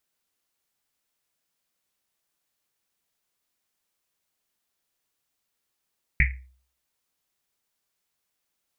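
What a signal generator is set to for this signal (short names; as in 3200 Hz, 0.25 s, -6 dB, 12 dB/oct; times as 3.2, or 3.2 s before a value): Risset drum, pitch 64 Hz, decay 0.49 s, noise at 2100 Hz, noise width 590 Hz, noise 40%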